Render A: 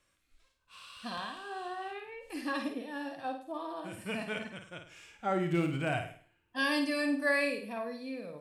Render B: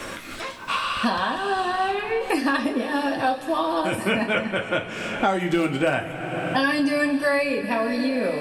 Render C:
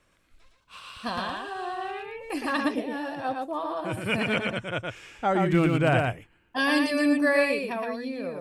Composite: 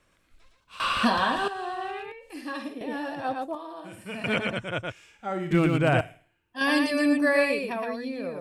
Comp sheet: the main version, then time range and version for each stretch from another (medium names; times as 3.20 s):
C
0.80–1.48 s: from B
2.12–2.81 s: from A
3.55–4.24 s: from A
4.92–5.51 s: from A
6.01–6.61 s: from A